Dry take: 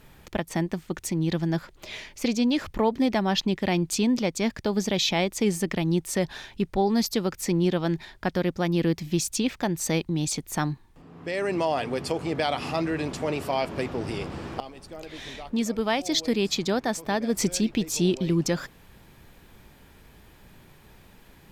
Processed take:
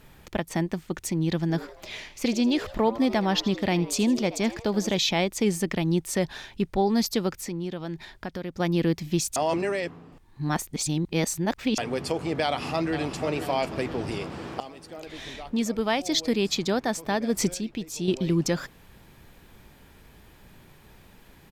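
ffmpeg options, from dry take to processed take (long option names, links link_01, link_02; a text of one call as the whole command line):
ffmpeg -i in.wav -filter_complex "[0:a]asettb=1/sr,asplit=3[link_01][link_02][link_03];[link_01]atrim=end=1.404[link_04];[link_02]atrim=start=1.4:end=4.99,asetpts=PTS-STARTPTS,afade=type=in:duration=0.004:curve=qsin,afade=type=out:start_time=3.586:duration=0.004:curve=qsin,asplit=5[link_05][link_06][link_07][link_08][link_09];[link_06]adelay=80,afreqshift=120,volume=-16dB[link_10];[link_07]adelay=160,afreqshift=240,volume=-22.4dB[link_11];[link_08]adelay=240,afreqshift=360,volume=-28.8dB[link_12];[link_09]adelay=320,afreqshift=480,volume=-35.1dB[link_13];[link_05][link_10][link_11][link_12][link_13]amix=inputs=5:normalize=0,atrim=end_sample=158319[link_14];[link_03]atrim=start=4.986[link_15];[link_04][link_14]acrossfade=duration=0.004:curve1=hsin:curve2=qsin[link_16];[link_16][link_15]acrossfade=duration=0.004:curve1=qsin:curve2=hsin,asettb=1/sr,asplit=3[link_17][link_18][link_19];[link_17]atrim=end=7.314[link_20];[link_18]atrim=start=7.31:end=8.6,asetpts=PTS-STARTPTS,afade=type=in:duration=0.004:curve=qsin,afade=type=out:start_time=1.286:duration=0.004:curve=qsin,acompressor=threshold=-35dB:ratio=2:attack=3.2:release=140:knee=1:detection=peak[link_21];[link_19]atrim=start=8.596[link_22];[link_20][link_21]acrossfade=duration=0.004:curve1=hsin:curve2=qsin[link_23];[link_23][link_22]acrossfade=duration=0.004:curve1=qsin:curve2=hsin,asplit=2[link_24][link_25];[link_25]afade=type=in:start_time=12.43:duration=0.01,afade=type=out:start_time=13.21:duration=0.01,aecho=0:1:490|980|1470|1960|2450|2940:0.298538|0.164196|0.0903078|0.0496693|0.0273181|0.015025[link_26];[link_24][link_26]amix=inputs=2:normalize=0,asettb=1/sr,asplit=3[link_27][link_28][link_29];[link_27]atrim=end=14.184[link_30];[link_28]atrim=start=14.18:end=15.07,asetpts=PTS-STARTPTS,afade=type=in:duration=0.004:curve=qsin,afade=type=out:start_time=0.886:duration=0.004:curve=qsin,highpass=frequency=130:poles=1[link_31];[link_29]atrim=start=15.066[link_32];[link_30][link_31]acrossfade=duration=0.004:curve1=hsin:curve2=qsin[link_33];[link_33][link_32]acrossfade=duration=0.004:curve1=qsin:curve2=hsin,asplit=5[link_34][link_35][link_36][link_37][link_38];[link_34]atrim=end=9.362[link_39];[link_35]atrim=start=9.358:end=11.782,asetpts=PTS-STARTPTS,areverse[link_40];[link_36]atrim=start=11.778:end=17.542[link_41];[link_37]atrim=start=17.538:end=18.082,asetpts=PTS-STARTPTS,volume=-7dB[link_42];[link_38]atrim=start=18.078[link_43];[link_39][link_40]acrossfade=duration=0.004:curve1=hsin:curve2=hsin[link_44];[link_44][link_41]acrossfade=duration=0.004:curve1=hsin:curve2=hsin[link_45];[link_45][link_42]acrossfade=duration=0.004:curve1=hsin:curve2=hsin[link_46];[link_46][link_43]acrossfade=duration=0.004:curve1=hsin:curve2=hsin" out.wav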